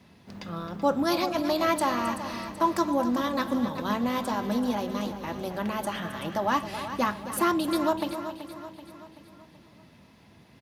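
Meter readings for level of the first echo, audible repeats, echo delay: -12.5 dB, 7, 266 ms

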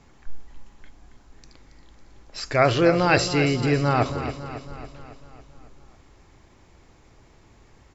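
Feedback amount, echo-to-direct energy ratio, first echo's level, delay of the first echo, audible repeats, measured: 58%, -9.0 dB, -11.0 dB, 276 ms, 6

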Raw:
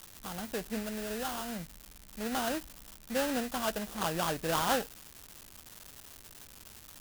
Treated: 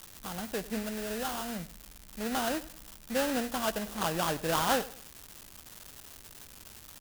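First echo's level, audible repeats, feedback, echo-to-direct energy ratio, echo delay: -18.0 dB, 2, 32%, -17.5 dB, 96 ms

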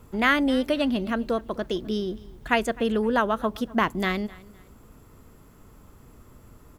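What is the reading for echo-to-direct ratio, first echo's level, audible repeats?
-21.5 dB, -22.0 dB, 2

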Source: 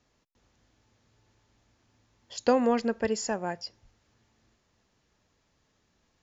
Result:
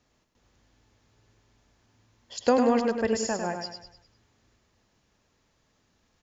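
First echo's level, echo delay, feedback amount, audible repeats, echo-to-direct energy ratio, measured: -6.0 dB, 101 ms, 42%, 4, -5.0 dB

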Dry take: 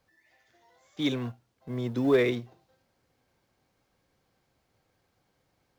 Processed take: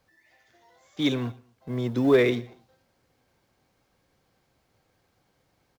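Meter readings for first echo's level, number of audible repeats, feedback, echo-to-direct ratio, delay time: -23.0 dB, 2, 37%, -22.5 dB, 118 ms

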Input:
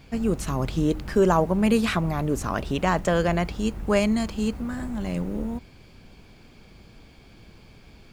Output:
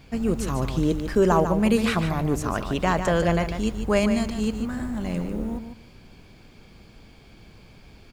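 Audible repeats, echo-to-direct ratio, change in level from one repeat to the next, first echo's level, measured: 2, -8.5 dB, -15.0 dB, -8.5 dB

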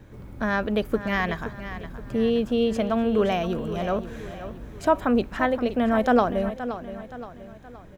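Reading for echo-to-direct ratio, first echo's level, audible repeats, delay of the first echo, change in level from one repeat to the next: -11.0 dB, -12.0 dB, 3, 522 ms, -7.0 dB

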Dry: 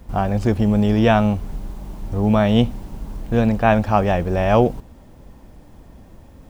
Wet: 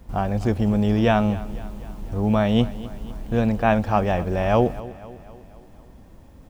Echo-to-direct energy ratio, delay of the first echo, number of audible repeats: -16.0 dB, 250 ms, 4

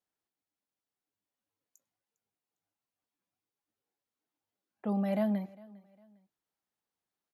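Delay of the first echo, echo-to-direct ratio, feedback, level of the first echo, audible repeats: 404 ms, -22.5 dB, 34%, -23.0 dB, 2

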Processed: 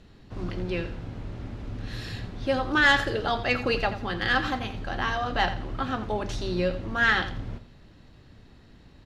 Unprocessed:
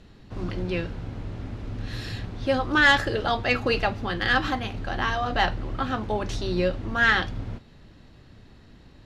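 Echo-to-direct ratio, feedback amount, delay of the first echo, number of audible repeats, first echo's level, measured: -12.0 dB, 27%, 85 ms, 2, -12.5 dB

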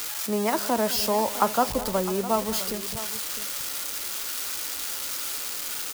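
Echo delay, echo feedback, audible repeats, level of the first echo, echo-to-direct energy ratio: 207 ms, no regular repeats, 2, -16.0 dB, -12.0 dB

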